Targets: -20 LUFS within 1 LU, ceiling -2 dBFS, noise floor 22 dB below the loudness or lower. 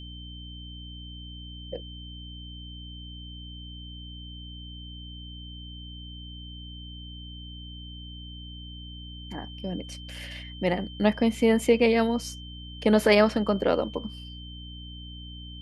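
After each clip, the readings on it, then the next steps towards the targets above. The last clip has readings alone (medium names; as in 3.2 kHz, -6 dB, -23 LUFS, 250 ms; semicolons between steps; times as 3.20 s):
hum 60 Hz; highest harmonic 300 Hz; hum level -40 dBFS; steady tone 3.1 kHz; tone level -44 dBFS; loudness -25.5 LUFS; peak level -7.0 dBFS; loudness target -20.0 LUFS
-> hum notches 60/120/180/240/300 Hz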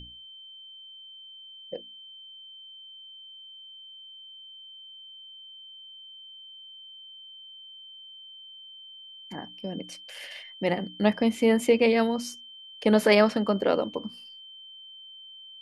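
hum not found; steady tone 3.1 kHz; tone level -44 dBFS
-> band-stop 3.1 kHz, Q 30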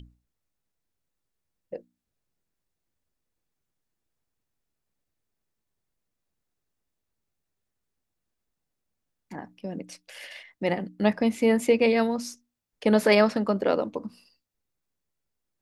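steady tone not found; loudness -24.0 LUFS; peak level -7.0 dBFS; loudness target -20.0 LUFS
-> trim +4 dB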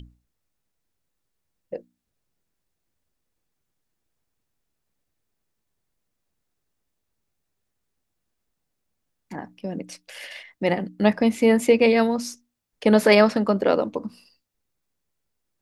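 loudness -20.0 LUFS; peak level -3.0 dBFS; noise floor -79 dBFS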